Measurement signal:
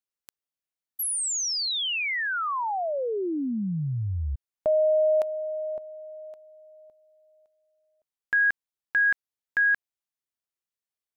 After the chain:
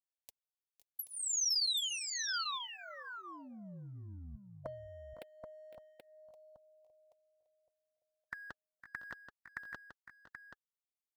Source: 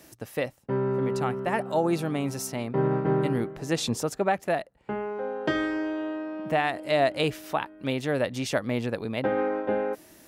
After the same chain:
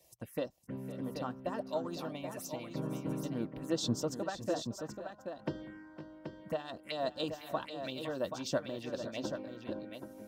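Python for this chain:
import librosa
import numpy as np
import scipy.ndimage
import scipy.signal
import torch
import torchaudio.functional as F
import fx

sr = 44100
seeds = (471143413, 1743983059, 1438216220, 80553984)

p1 = fx.dynamic_eq(x, sr, hz=720.0, q=4.1, threshold_db=-39.0, ratio=4.0, max_db=-6)
p2 = fx.hpss(p1, sr, part='harmonic', gain_db=-15)
p3 = np.sign(p2) * np.maximum(np.abs(p2) - 10.0 ** (-49.5 / 20.0), 0.0)
p4 = p2 + F.gain(torch.from_numpy(p3), -7.5).numpy()
p5 = fx.env_phaser(p4, sr, low_hz=230.0, high_hz=2200.0, full_db=-28.5)
p6 = fx.notch_comb(p5, sr, f0_hz=420.0)
p7 = fx.echo_multitap(p6, sr, ms=(508, 527, 780), db=(-14.0, -16.5, -7.5))
y = F.gain(torch.from_numpy(p7), -5.5).numpy()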